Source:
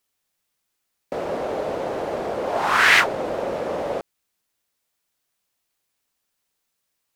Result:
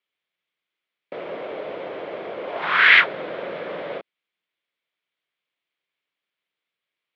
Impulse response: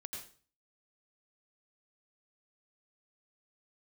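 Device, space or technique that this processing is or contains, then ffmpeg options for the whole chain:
kitchen radio: -filter_complex "[0:a]asettb=1/sr,asplit=3[a][b][c];[a]atrim=end=2.624[d];[b]atrim=start=2.62:end=3.98,asetpts=PTS-STARTPTS,afade=t=in:d=0.004:c=qsin,afade=t=out:st=1.356:d=0.004:c=qsin,equalizer=f=160:t=o:w=0.67:g=5,equalizer=f=1.6k:t=o:w=0.67:g=5,equalizer=f=4k:t=o:w=0.67:g=4[e];[c]atrim=start=3.976[f];[d][e]acrossfade=d=0.004:c1=hsin:c2=qsin[g];[g][f]acrossfade=d=0.004:c1=qsin:c2=hsin,highpass=180,equalizer=f=240:t=q:w=4:g=-6,equalizer=f=820:t=q:w=4:g=-6,equalizer=f=2.2k:t=q:w=4:g=7,equalizer=f=3.3k:t=q:w=4:g=6,lowpass=f=3.6k:w=0.5412,lowpass=f=3.6k:w=1.3066,volume=-4.5dB"

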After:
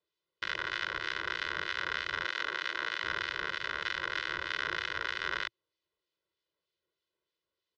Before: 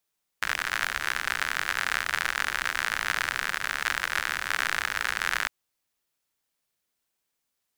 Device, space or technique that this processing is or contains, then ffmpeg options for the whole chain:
guitar amplifier with harmonic tremolo: -filter_complex "[0:a]asettb=1/sr,asplit=3[a][b][c];[a]atrim=end=2.244[d];[b]atrim=start=2.24:end=3.03,asetpts=PTS-STARTPTS,afade=t=in:d=0.004:c=qsin,afade=t=out:st=0.786:d=0.004:c=qsin,highpass=230[e];[c]atrim=start=3.026[f];[d][e]acrossfade=d=0.004:c1=hsin:c2=qsin[g];[g][f]acrossfade=d=0.004:c1=qsin:c2=hsin,acrossover=split=1900[h][i];[h]aeval=exprs='val(0)*(1-0.5/2+0.5/2*cos(2*PI*3.2*n/s))':c=same[j];[i]aeval=exprs='val(0)*(1-0.5/2-0.5/2*cos(2*PI*3.2*n/s))':c=same[k];[j][k]amix=inputs=2:normalize=0,asoftclip=type=tanh:threshold=-17.5dB,highpass=79,equalizer=f=120:t=q:w=4:g=-6,equalizer=f=340:t=q:w=4:g=9,equalizer=f=850:t=q:w=4:g=-9,equalizer=f=1.6k:t=q:w=4:g=-6,equalizer=f=2.4k:t=q:w=4:g=-7,lowpass=f=4.1k:w=0.5412,lowpass=f=4.1k:w=1.3066,aecho=1:1:2:0.9"

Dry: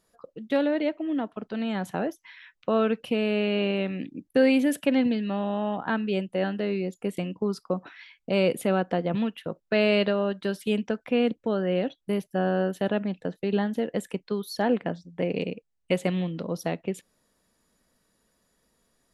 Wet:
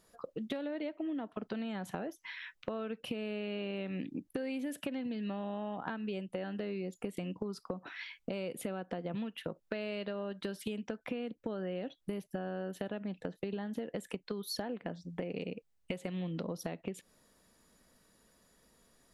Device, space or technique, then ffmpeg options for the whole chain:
serial compression, peaks first: -af "acompressor=threshold=-33dB:ratio=5,acompressor=threshold=-39dB:ratio=3,volume=3dB"

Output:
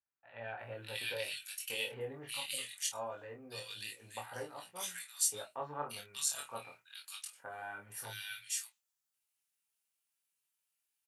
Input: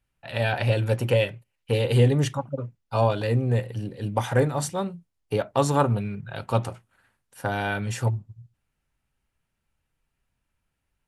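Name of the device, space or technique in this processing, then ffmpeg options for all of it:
double-tracked vocal: -filter_complex "[0:a]aderivative,asplit=2[a][b];[b]adelay=27,volume=-7dB[c];[a][c]amix=inputs=2:normalize=0,acrossover=split=1700[d][e];[e]adelay=590[f];[d][f]amix=inputs=2:normalize=0,flanger=delay=17:depth=5.8:speed=0.22,volume=4.5dB"

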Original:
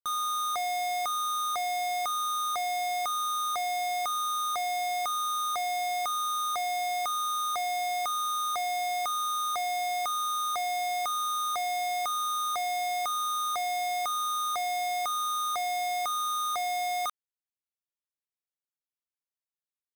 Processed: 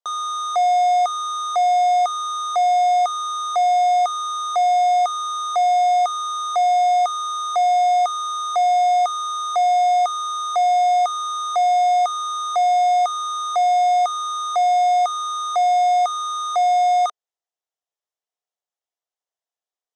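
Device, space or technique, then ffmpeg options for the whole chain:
phone speaker on a table: -af "highpass=f=420:w=0.5412,highpass=f=420:w=1.3066,equalizer=f=430:t=q:w=4:g=4,equalizer=f=710:t=q:w=4:g=9,equalizer=f=1.5k:t=q:w=4:g=-4,equalizer=f=2.4k:t=q:w=4:g=-9,equalizer=f=4.4k:t=q:w=4:g=-6,lowpass=f=7.2k:w=0.5412,lowpass=f=7.2k:w=1.3066,volume=6dB"

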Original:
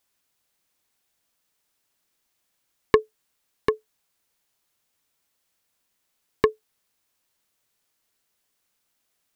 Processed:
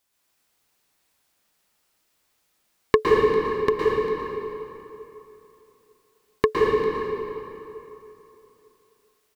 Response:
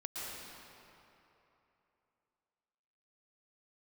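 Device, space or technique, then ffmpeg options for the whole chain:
cave: -filter_complex "[0:a]aecho=1:1:399:0.168[a];[1:a]atrim=start_sample=2205[b];[a][b]afir=irnorm=-1:irlink=0,volume=5dB"

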